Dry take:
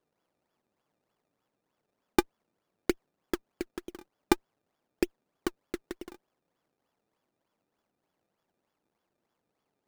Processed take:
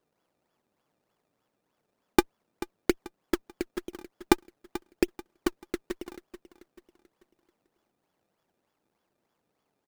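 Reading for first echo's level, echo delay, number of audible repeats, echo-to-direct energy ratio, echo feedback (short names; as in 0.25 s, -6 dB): -15.0 dB, 0.437 s, 3, -14.0 dB, 40%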